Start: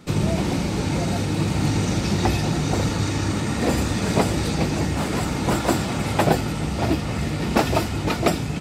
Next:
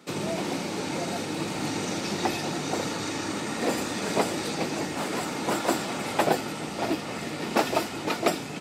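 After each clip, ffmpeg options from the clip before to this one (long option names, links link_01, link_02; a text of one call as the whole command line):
ffmpeg -i in.wav -af "highpass=280,volume=-3dB" out.wav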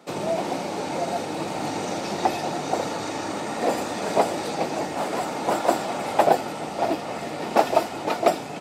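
ffmpeg -i in.wav -af "equalizer=frequency=700:width=1.2:gain=10.5,volume=-2dB" out.wav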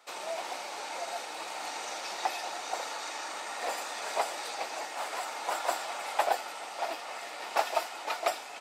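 ffmpeg -i in.wav -af "highpass=980,volume=-3.5dB" out.wav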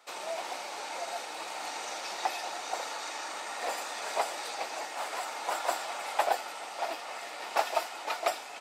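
ffmpeg -i in.wav -af anull out.wav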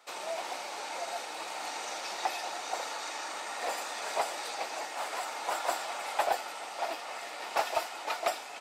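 ffmpeg -i in.wav -af "asoftclip=type=tanh:threshold=-16.5dB" out.wav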